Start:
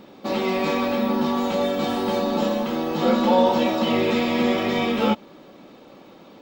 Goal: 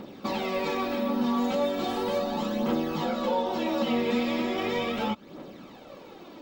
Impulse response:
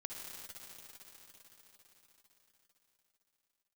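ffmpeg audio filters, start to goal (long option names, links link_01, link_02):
-af "acompressor=threshold=-28dB:ratio=3,aphaser=in_gain=1:out_gain=1:delay=4.4:decay=0.45:speed=0.37:type=triangular"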